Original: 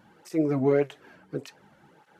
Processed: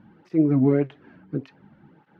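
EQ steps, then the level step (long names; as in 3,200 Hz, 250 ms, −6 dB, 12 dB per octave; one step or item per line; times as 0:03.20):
high-frequency loss of the air 310 metres
low shelf with overshoot 360 Hz +7 dB, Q 1.5
0.0 dB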